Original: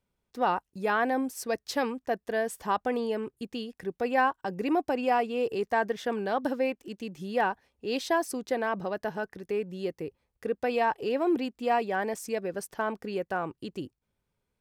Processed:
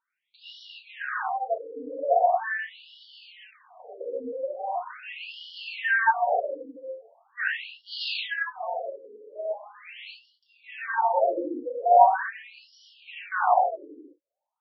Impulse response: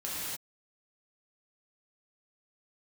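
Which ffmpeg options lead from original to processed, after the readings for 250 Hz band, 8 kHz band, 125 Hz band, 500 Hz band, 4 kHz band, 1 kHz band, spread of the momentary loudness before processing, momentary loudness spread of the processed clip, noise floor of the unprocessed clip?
-12.0 dB, under -25 dB, under -35 dB, 0.0 dB, +4.0 dB, +5.0 dB, 11 LU, 21 LU, -83 dBFS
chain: -filter_complex "[0:a]lowshelf=f=520:t=q:w=3:g=-9.5,tremolo=f=0.52:d=0.72[a];[1:a]atrim=start_sample=2205[b];[a][b]afir=irnorm=-1:irlink=0,afftfilt=real='re*between(b*sr/1024,360*pow(4100/360,0.5+0.5*sin(2*PI*0.41*pts/sr))/1.41,360*pow(4100/360,0.5+0.5*sin(2*PI*0.41*pts/sr))*1.41)':imag='im*between(b*sr/1024,360*pow(4100/360,0.5+0.5*sin(2*PI*0.41*pts/sr))/1.41,360*pow(4100/360,0.5+0.5*sin(2*PI*0.41*pts/sr))*1.41)':win_size=1024:overlap=0.75,volume=6.5dB"

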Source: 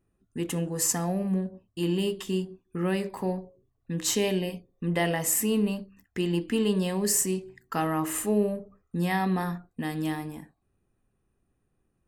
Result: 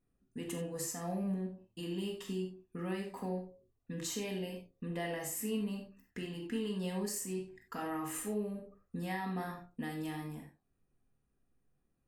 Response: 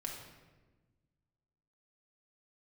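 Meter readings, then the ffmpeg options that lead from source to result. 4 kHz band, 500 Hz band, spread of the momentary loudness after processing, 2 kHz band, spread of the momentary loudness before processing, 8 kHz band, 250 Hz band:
-11.0 dB, -11.0 dB, 9 LU, -10.0 dB, 12 LU, -13.5 dB, -10.5 dB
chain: -filter_complex "[0:a]alimiter=limit=-22dB:level=0:latency=1:release=246[a];[1:a]atrim=start_sample=2205,atrim=end_sample=4410[b];[a][b]afir=irnorm=-1:irlink=0,volume=-5dB"

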